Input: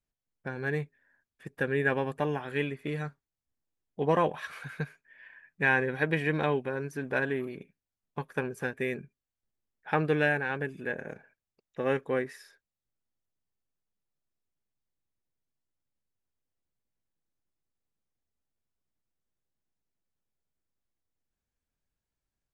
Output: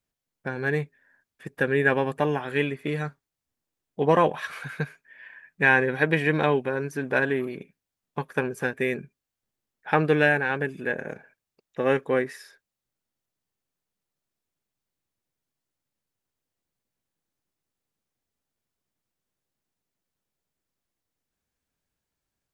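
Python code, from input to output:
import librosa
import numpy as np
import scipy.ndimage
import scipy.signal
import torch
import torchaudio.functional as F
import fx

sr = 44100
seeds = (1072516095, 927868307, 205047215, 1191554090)

y = fx.low_shelf(x, sr, hz=61.0, db=-11.0)
y = y * librosa.db_to_amplitude(6.0)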